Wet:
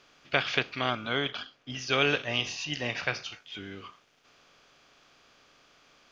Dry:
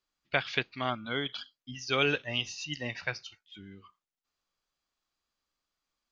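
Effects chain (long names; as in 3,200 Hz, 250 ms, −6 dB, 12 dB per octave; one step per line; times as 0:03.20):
compressor on every frequency bin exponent 0.6
0:01.30–0:01.70: high-shelf EQ 3,800 Hz −9.5 dB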